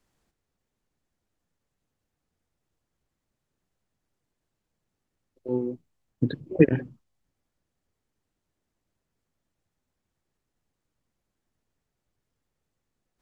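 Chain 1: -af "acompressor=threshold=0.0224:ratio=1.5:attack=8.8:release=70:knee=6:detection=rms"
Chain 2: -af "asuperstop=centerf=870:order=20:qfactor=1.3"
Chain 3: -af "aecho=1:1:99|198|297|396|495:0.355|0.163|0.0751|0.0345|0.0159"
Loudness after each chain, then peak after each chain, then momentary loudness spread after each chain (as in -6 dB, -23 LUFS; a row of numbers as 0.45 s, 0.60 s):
-32.5 LUFS, -26.5 LUFS, -26.0 LUFS; -11.5 dBFS, -3.5 dBFS, -3.5 dBFS; 16 LU, 22 LU, 20 LU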